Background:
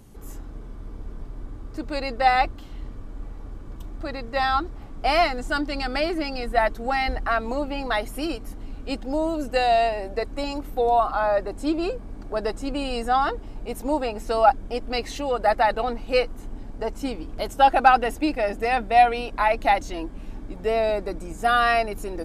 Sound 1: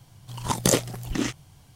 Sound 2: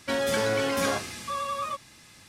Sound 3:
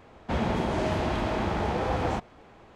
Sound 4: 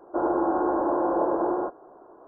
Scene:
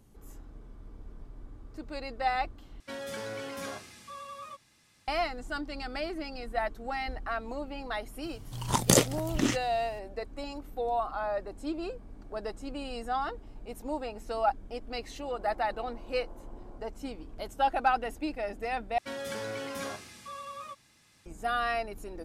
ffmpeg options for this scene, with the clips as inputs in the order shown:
-filter_complex "[2:a]asplit=2[s0][s1];[0:a]volume=0.299[s2];[4:a]acompressor=threshold=0.02:ratio=6:attack=3.2:release=140:knee=1:detection=peak[s3];[s2]asplit=3[s4][s5][s6];[s4]atrim=end=2.804[s7];[s0]atrim=end=2.28,asetpts=PTS-STARTPTS,volume=0.237[s8];[s5]atrim=start=5.076:end=18.984[s9];[s1]atrim=end=2.28,asetpts=PTS-STARTPTS,volume=0.282[s10];[s6]atrim=start=21.256[s11];[1:a]atrim=end=1.75,asetpts=PTS-STARTPTS,volume=0.891,afade=t=in:d=0.004:c=hsin,afade=t=out:st=1.746:d=0.004:c=hsin,adelay=8240[s12];[s3]atrim=end=2.27,asetpts=PTS-STARTPTS,volume=0.15,afade=t=in:d=0.004:c=hsin,afade=t=out:st=2.266:d=0.004:c=hsin,adelay=15090[s13];[s7][s8]acrossfade=d=0.004:c1=hsin:c2=hsin[s14];[s14][s9]acrossfade=d=0.004:c1=hsin:c2=hsin[s15];[s15][s10]acrossfade=d=0.004:c1=hsin:c2=hsin[s16];[s16][s11]acrossfade=d=0.004:c1=hsin:c2=hsin[s17];[s17][s12][s13]amix=inputs=3:normalize=0"

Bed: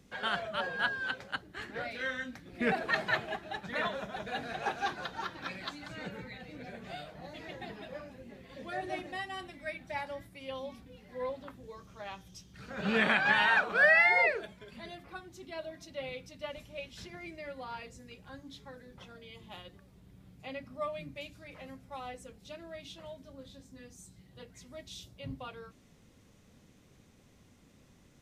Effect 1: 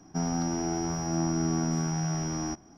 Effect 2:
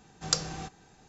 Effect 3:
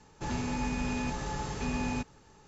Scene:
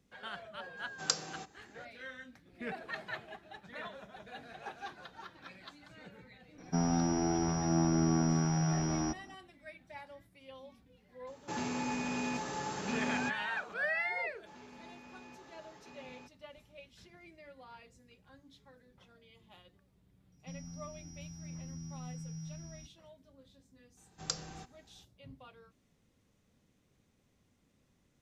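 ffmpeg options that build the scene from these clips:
-filter_complex "[2:a]asplit=2[s0][s1];[1:a]asplit=2[s2][s3];[3:a]asplit=2[s4][s5];[0:a]volume=0.282[s6];[s0]highpass=240[s7];[s2]lowpass=5800[s8];[s4]highpass=210[s9];[s5]highpass=290,lowpass=5400[s10];[s3]firequalizer=gain_entry='entry(140,0);entry(360,-26);entry(950,-25);entry(2200,-11);entry(6000,-5)':delay=0.05:min_phase=1[s11];[s7]atrim=end=1.08,asetpts=PTS-STARTPTS,volume=0.596,afade=t=in:d=0.004:c=hsin,afade=t=out:st=1.076:d=0.004:c=hsin,adelay=770[s12];[s8]atrim=end=2.77,asetpts=PTS-STARTPTS,volume=0.891,afade=t=in:d=0.004:c=hsin,afade=t=out:st=2.766:d=0.004:c=hsin,adelay=290178S[s13];[s9]atrim=end=2.47,asetpts=PTS-STARTPTS,volume=0.891,afade=t=in:d=0.004:c=hsin,afade=t=out:st=2.466:d=0.004:c=hsin,adelay=11270[s14];[s10]atrim=end=2.47,asetpts=PTS-STARTPTS,volume=0.141,afade=t=in:d=0.004:c=hsin,afade=t=out:st=2.466:d=0.004:c=hsin,adelay=14250[s15];[s11]atrim=end=2.77,asetpts=PTS-STARTPTS,volume=0.282,afade=t=in:d=0.004:c=hsin,afade=t=out:st=2.766:d=0.004:c=hsin,adelay=20320[s16];[s1]atrim=end=1.08,asetpts=PTS-STARTPTS,volume=0.335,afade=t=in:d=0.004:c=hsin,afade=t=out:st=1.076:d=0.004:c=hsin,adelay=23970[s17];[s6][s12][s13][s14][s15][s16][s17]amix=inputs=7:normalize=0"

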